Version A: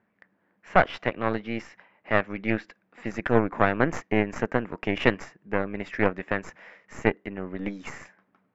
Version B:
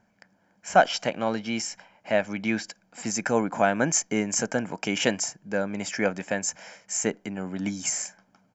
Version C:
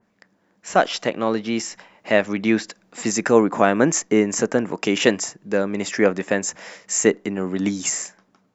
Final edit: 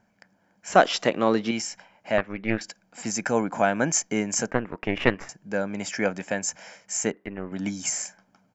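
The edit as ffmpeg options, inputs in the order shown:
-filter_complex "[0:a]asplit=3[a][b][c];[1:a]asplit=5[d][e][f][g][h];[d]atrim=end=0.722[i];[2:a]atrim=start=0.718:end=1.512[j];[e]atrim=start=1.508:end=2.182[k];[a]atrim=start=2.178:end=2.612[l];[f]atrim=start=2.608:end=4.512[m];[b]atrim=start=4.508:end=5.292[n];[g]atrim=start=5.288:end=7.122[o];[c]atrim=start=7.118:end=7.522[p];[h]atrim=start=7.518[q];[i][j]acrossfade=d=0.004:c1=hsin:c2=hsin[r];[r][k]acrossfade=d=0.004:c1=hsin:c2=hsin[s];[s][l]acrossfade=d=0.004:c1=hsin:c2=hsin[t];[t][m]acrossfade=d=0.004:c1=hsin:c2=hsin[u];[u][n]acrossfade=d=0.004:c1=hsin:c2=hsin[v];[v][o]acrossfade=d=0.004:c1=hsin:c2=hsin[w];[w][p]acrossfade=d=0.004:c1=hsin:c2=hsin[x];[x][q]acrossfade=d=0.004:c1=hsin:c2=hsin"

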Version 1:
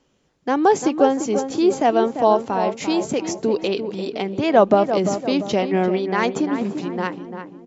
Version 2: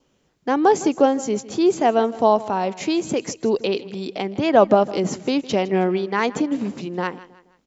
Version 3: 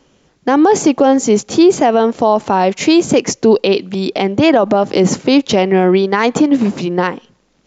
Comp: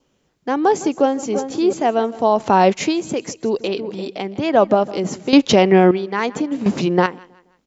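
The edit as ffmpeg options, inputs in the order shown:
-filter_complex "[0:a]asplit=2[a][b];[2:a]asplit=3[c][d][e];[1:a]asplit=6[f][g][h][i][j][k];[f]atrim=end=1.232[l];[a]atrim=start=1.228:end=1.732[m];[g]atrim=start=1.728:end=2.54[n];[c]atrim=start=2.3:end=2.94[o];[h]atrim=start=2.7:end=3.642[p];[b]atrim=start=3.638:end=4.082[q];[i]atrim=start=4.078:end=5.332[r];[d]atrim=start=5.328:end=5.912[s];[j]atrim=start=5.908:end=6.662[t];[e]atrim=start=6.658:end=7.062[u];[k]atrim=start=7.058[v];[l][m]acrossfade=d=0.004:c1=hsin:c2=hsin[w];[w][n]acrossfade=d=0.004:c1=hsin:c2=hsin[x];[x][o]acrossfade=d=0.24:c1=tri:c2=tri[y];[y][p]acrossfade=d=0.24:c1=tri:c2=tri[z];[z][q]acrossfade=d=0.004:c1=hsin:c2=hsin[aa];[aa][r]acrossfade=d=0.004:c1=hsin:c2=hsin[ab];[ab][s]acrossfade=d=0.004:c1=hsin:c2=hsin[ac];[ac][t]acrossfade=d=0.004:c1=hsin:c2=hsin[ad];[ad][u]acrossfade=d=0.004:c1=hsin:c2=hsin[ae];[ae][v]acrossfade=d=0.004:c1=hsin:c2=hsin"

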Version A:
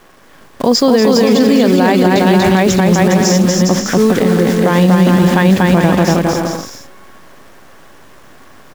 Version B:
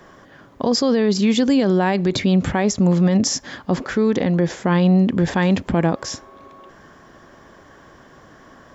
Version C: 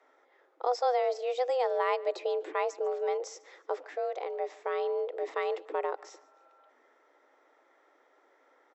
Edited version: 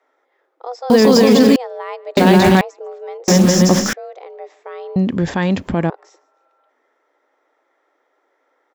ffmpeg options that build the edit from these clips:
-filter_complex "[0:a]asplit=3[a][b][c];[2:a]asplit=5[d][e][f][g][h];[d]atrim=end=0.902[i];[a]atrim=start=0.898:end=1.562[j];[e]atrim=start=1.558:end=2.172[k];[b]atrim=start=2.168:end=2.612[l];[f]atrim=start=2.608:end=3.282[m];[c]atrim=start=3.278:end=3.932[n];[g]atrim=start=3.928:end=4.962[o];[1:a]atrim=start=4.958:end=5.902[p];[h]atrim=start=5.898[q];[i][j]acrossfade=d=0.004:c1=hsin:c2=hsin[r];[r][k]acrossfade=d=0.004:c1=hsin:c2=hsin[s];[s][l]acrossfade=d=0.004:c1=hsin:c2=hsin[t];[t][m]acrossfade=d=0.004:c1=hsin:c2=hsin[u];[u][n]acrossfade=d=0.004:c1=hsin:c2=hsin[v];[v][o]acrossfade=d=0.004:c1=hsin:c2=hsin[w];[w][p]acrossfade=d=0.004:c1=hsin:c2=hsin[x];[x][q]acrossfade=d=0.004:c1=hsin:c2=hsin"

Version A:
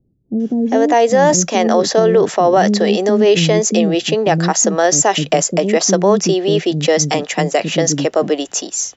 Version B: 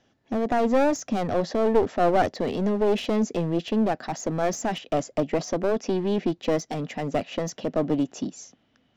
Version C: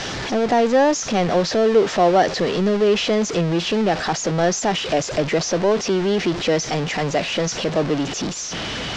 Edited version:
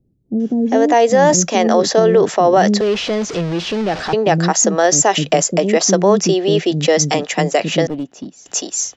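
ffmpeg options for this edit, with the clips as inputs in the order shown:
-filter_complex "[0:a]asplit=3[a][b][c];[a]atrim=end=2.812[d];[2:a]atrim=start=2.808:end=4.132[e];[b]atrim=start=4.128:end=7.872[f];[1:a]atrim=start=7.868:end=8.462[g];[c]atrim=start=8.458[h];[d][e]acrossfade=d=0.004:c1=hsin:c2=hsin[i];[i][f]acrossfade=d=0.004:c1=hsin:c2=hsin[j];[j][g]acrossfade=d=0.004:c1=hsin:c2=hsin[k];[k][h]acrossfade=d=0.004:c1=hsin:c2=hsin"

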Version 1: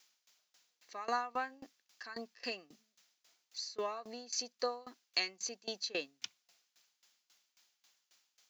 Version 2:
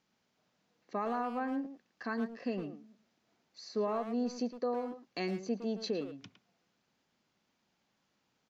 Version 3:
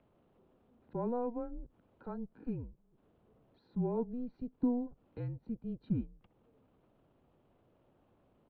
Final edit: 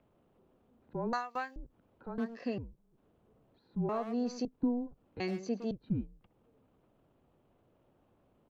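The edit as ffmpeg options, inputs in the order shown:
-filter_complex "[1:a]asplit=3[a][b][c];[2:a]asplit=5[d][e][f][g][h];[d]atrim=end=1.132[i];[0:a]atrim=start=1.128:end=1.562[j];[e]atrim=start=1.558:end=2.182[k];[a]atrim=start=2.178:end=2.582[l];[f]atrim=start=2.578:end=3.892[m];[b]atrim=start=3.888:end=4.452[n];[g]atrim=start=4.448:end=5.202[o];[c]atrim=start=5.198:end=5.712[p];[h]atrim=start=5.708[q];[i][j]acrossfade=d=0.004:c1=hsin:c2=hsin[r];[r][k]acrossfade=d=0.004:c1=hsin:c2=hsin[s];[s][l]acrossfade=d=0.004:c1=hsin:c2=hsin[t];[t][m]acrossfade=d=0.004:c1=hsin:c2=hsin[u];[u][n]acrossfade=d=0.004:c1=hsin:c2=hsin[v];[v][o]acrossfade=d=0.004:c1=hsin:c2=hsin[w];[w][p]acrossfade=d=0.004:c1=hsin:c2=hsin[x];[x][q]acrossfade=d=0.004:c1=hsin:c2=hsin"

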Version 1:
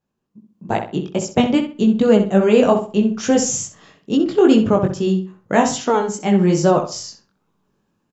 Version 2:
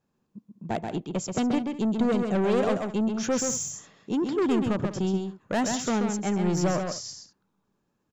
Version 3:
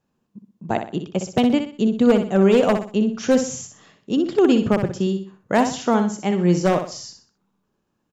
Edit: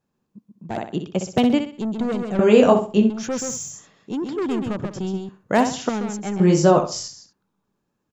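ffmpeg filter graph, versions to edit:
-filter_complex "[2:a]asplit=2[a][b];[0:a]asplit=2[c][d];[1:a]asplit=5[e][f][g][h][i];[e]atrim=end=0.772[j];[a]atrim=start=0.768:end=1.782[k];[f]atrim=start=1.778:end=2.392[l];[c]atrim=start=2.388:end=3.102[m];[g]atrim=start=3.098:end=5.292[n];[b]atrim=start=5.288:end=5.892[o];[h]atrim=start=5.888:end=6.402[p];[d]atrim=start=6.398:end=7.082[q];[i]atrim=start=7.078[r];[j][k]acrossfade=d=0.004:c1=hsin:c2=hsin[s];[s][l]acrossfade=d=0.004:c1=hsin:c2=hsin[t];[t][m]acrossfade=d=0.004:c1=hsin:c2=hsin[u];[u][n]acrossfade=d=0.004:c1=hsin:c2=hsin[v];[v][o]acrossfade=d=0.004:c1=hsin:c2=hsin[w];[w][p]acrossfade=d=0.004:c1=hsin:c2=hsin[x];[x][q]acrossfade=d=0.004:c1=hsin:c2=hsin[y];[y][r]acrossfade=d=0.004:c1=hsin:c2=hsin"

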